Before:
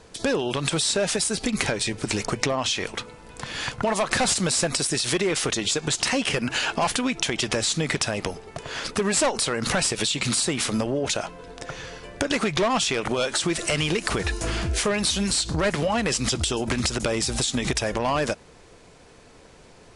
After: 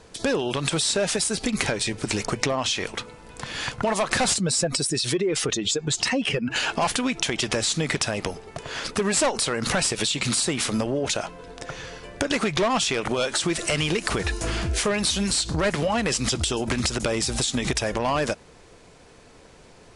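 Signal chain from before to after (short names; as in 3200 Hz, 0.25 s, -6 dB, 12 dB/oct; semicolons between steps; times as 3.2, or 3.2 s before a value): 4.36–6.56 spectral contrast raised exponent 1.6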